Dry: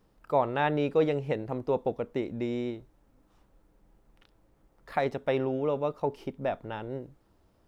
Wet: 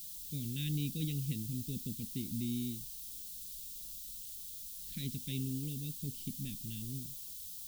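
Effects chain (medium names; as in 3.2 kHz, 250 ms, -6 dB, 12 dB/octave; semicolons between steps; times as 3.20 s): added noise blue -47 dBFS; elliptic band-stop 220–3400 Hz, stop band 80 dB; companded quantiser 8-bit; trim +1 dB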